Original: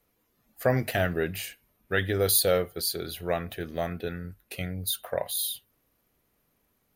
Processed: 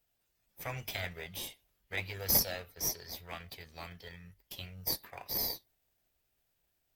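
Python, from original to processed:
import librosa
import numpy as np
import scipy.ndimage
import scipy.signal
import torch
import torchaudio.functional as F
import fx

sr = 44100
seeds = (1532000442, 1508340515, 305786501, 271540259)

p1 = fx.tone_stack(x, sr, knobs='10-0-10')
p2 = fx.formant_shift(p1, sr, semitones=4)
p3 = fx.sample_hold(p2, sr, seeds[0], rate_hz=1400.0, jitter_pct=0)
p4 = p2 + F.gain(torch.from_numpy(p3), -9.5).numpy()
y = F.gain(torch.from_numpy(p4), -3.5).numpy()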